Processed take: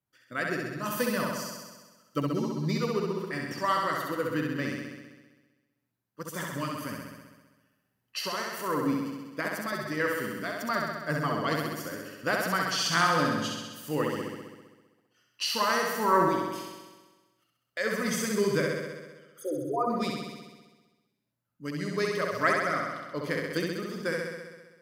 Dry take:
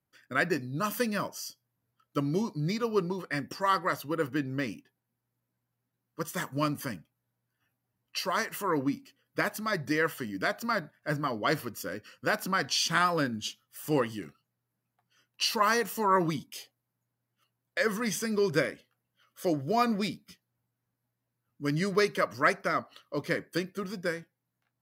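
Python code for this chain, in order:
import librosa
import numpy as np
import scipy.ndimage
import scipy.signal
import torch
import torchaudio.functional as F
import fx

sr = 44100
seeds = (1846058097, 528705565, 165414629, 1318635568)

y = fx.envelope_sharpen(x, sr, power=3.0, at=(18.65, 19.9))
y = fx.tremolo_random(y, sr, seeds[0], hz=3.5, depth_pct=55)
y = fx.room_flutter(y, sr, wall_m=11.2, rt60_s=1.3)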